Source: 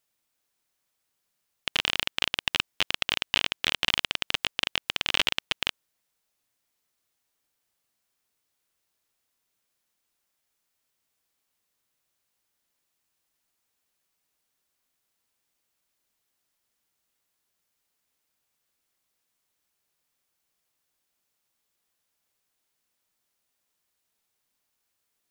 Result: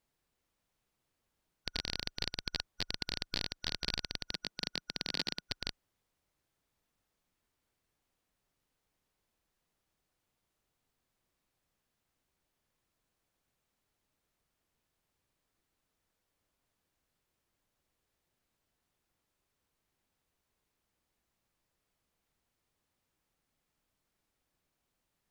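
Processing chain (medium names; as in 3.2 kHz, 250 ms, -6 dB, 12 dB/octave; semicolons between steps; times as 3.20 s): four frequency bands reordered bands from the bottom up 4123; tilt EQ -2.5 dB/octave; peak limiter -17 dBFS, peak gain reduction 8.5 dB; 4.31–5.47 s: resonant low shelf 120 Hz -13 dB, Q 1.5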